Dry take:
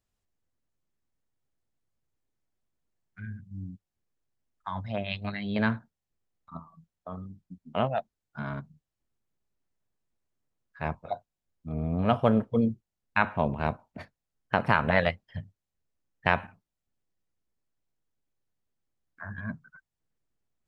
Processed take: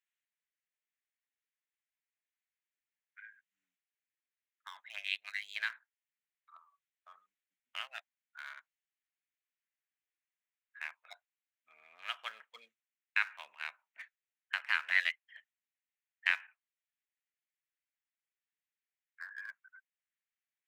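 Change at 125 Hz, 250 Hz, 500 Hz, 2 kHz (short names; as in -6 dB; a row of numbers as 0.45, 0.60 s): under -40 dB, under -40 dB, -34.0 dB, -2.5 dB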